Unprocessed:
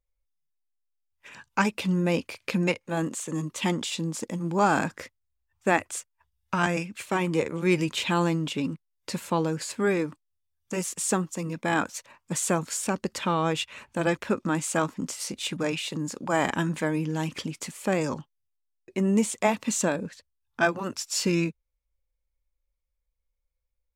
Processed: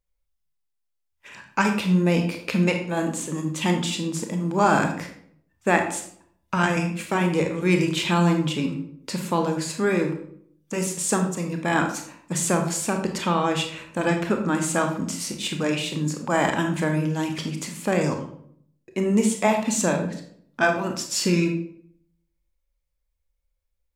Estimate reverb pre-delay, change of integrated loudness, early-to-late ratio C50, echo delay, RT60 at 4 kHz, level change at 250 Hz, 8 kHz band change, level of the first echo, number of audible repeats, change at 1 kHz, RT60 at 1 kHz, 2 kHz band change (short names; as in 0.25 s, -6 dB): 25 ms, +3.5 dB, 7.0 dB, none, 0.40 s, +4.5 dB, +3.0 dB, none, none, +3.5 dB, 0.55 s, +3.5 dB